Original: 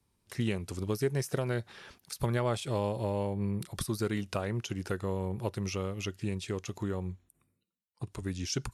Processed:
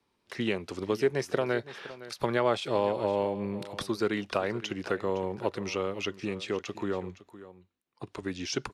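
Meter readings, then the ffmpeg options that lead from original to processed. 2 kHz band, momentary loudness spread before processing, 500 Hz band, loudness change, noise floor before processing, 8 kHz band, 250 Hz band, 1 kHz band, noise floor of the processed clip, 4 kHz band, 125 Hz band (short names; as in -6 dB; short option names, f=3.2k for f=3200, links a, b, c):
+6.0 dB, 9 LU, +5.5 dB, +3.0 dB, -78 dBFS, -3.0 dB, +1.5 dB, +6.0 dB, -75 dBFS, +4.0 dB, -7.0 dB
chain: -filter_complex "[0:a]acrossover=split=240 5100:gain=0.158 1 0.141[a][b][c];[a][b][c]amix=inputs=3:normalize=0,aecho=1:1:513:0.158,volume=6dB"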